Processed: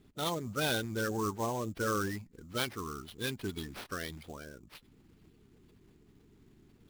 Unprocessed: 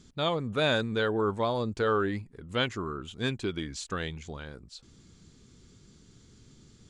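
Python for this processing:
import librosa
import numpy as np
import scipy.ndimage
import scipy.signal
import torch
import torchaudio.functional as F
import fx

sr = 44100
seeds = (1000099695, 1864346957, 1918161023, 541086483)

y = fx.spec_quant(x, sr, step_db=30)
y = fx.sample_hold(y, sr, seeds[0], rate_hz=7200.0, jitter_pct=20)
y = y * 10.0 ** (-5.0 / 20.0)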